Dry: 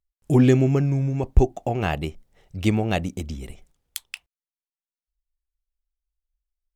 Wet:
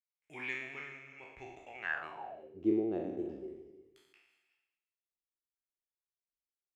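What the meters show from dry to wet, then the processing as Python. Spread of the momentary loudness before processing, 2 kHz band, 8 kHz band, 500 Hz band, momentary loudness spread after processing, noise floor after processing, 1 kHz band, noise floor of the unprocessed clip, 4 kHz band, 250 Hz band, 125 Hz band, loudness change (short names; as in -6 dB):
20 LU, -5.0 dB, under -25 dB, -14.5 dB, 19 LU, under -85 dBFS, -15.5 dB, under -85 dBFS, under -15 dB, -14.5 dB, -33.5 dB, -16.0 dB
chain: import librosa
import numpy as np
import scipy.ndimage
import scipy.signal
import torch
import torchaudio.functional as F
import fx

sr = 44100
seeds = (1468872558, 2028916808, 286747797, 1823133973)

y = fx.spec_trails(x, sr, decay_s=0.94)
y = fx.rev_gated(y, sr, seeds[0], gate_ms=400, shape='rising', drr_db=12.0)
y = fx.filter_sweep_bandpass(y, sr, from_hz=2200.0, to_hz=360.0, start_s=1.78, end_s=2.62, q=7.9)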